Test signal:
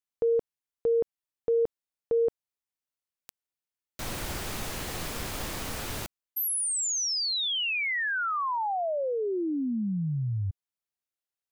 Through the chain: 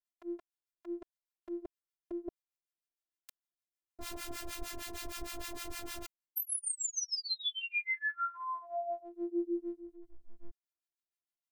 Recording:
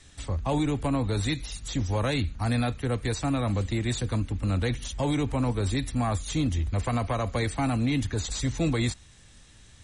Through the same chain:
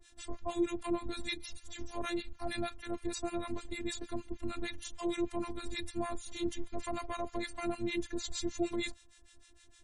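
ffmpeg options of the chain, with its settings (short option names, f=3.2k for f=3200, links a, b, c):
-filter_complex "[0:a]acrossover=split=920[a][b];[a]aeval=exprs='val(0)*(1-1/2+1/2*cos(2*PI*6.5*n/s))':c=same[c];[b]aeval=exprs='val(0)*(1-1/2-1/2*cos(2*PI*6.5*n/s))':c=same[d];[c][d]amix=inputs=2:normalize=0,afftfilt=real='hypot(re,im)*cos(PI*b)':imag='0':win_size=512:overlap=0.75"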